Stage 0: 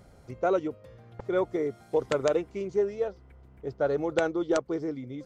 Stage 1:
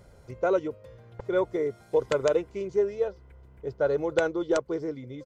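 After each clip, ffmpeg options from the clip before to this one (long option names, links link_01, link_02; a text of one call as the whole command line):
ffmpeg -i in.wav -af "aecho=1:1:2:0.34" out.wav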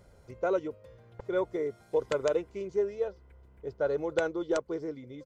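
ffmpeg -i in.wav -af "equalizer=frequency=130:width_type=o:width=0.23:gain=-5,volume=-4dB" out.wav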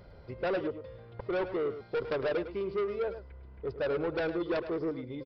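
ffmpeg -i in.wav -filter_complex "[0:a]aresample=11025,asoftclip=type=tanh:threshold=-32.5dB,aresample=44100,asplit=2[link_01][link_02];[link_02]adelay=105,volume=-11dB,highshelf=frequency=4000:gain=-2.36[link_03];[link_01][link_03]amix=inputs=2:normalize=0,volume=5dB" out.wav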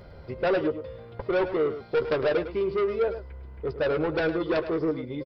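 ffmpeg -i in.wav -filter_complex "[0:a]asplit=2[link_01][link_02];[link_02]adelay=13,volume=-10.5dB[link_03];[link_01][link_03]amix=inputs=2:normalize=0,volume=6dB" out.wav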